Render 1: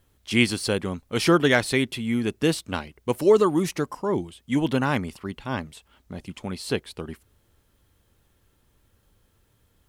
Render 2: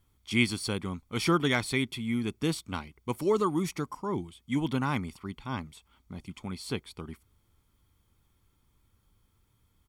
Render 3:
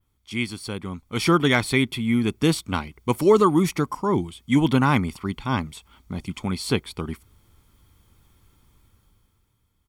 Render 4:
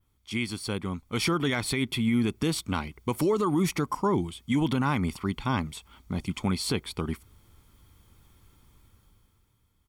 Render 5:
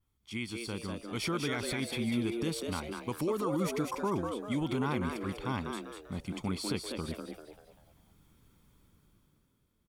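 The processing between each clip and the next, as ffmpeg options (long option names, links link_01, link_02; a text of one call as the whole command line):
ffmpeg -i in.wav -af "aecho=1:1:0.9:0.49,volume=-7dB" out.wav
ffmpeg -i in.wav -af "adynamicequalizer=threshold=0.00316:dfrequency=6400:dqfactor=0.75:tfrequency=6400:tqfactor=0.75:attack=5:release=100:ratio=0.375:range=2.5:mode=cutabove:tftype=bell,dynaudnorm=framelen=180:gausssize=11:maxgain=13dB,volume=-2dB" out.wav
ffmpeg -i in.wav -af "alimiter=limit=-17dB:level=0:latency=1:release=85" out.wav
ffmpeg -i in.wav -filter_complex "[0:a]asplit=6[link_01][link_02][link_03][link_04][link_05][link_06];[link_02]adelay=196,afreqshift=110,volume=-5dB[link_07];[link_03]adelay=392,afreqshift=220,volume=-13.4dB[link_08];[link_04]adelay=588,afreqshift=330,volume=-21.8dB[link_09];[link_05]adelay=784,afreqshift=440,volume=-30.2dB[link_10];[link_06]adelay=980,afreqshift=550,volume=-38.6dB[link_11];[link_01][link_07][link_08][link_09][link_10][link_11]amix=inputs=6:normalize=0,volume=-7.5dB" out.wav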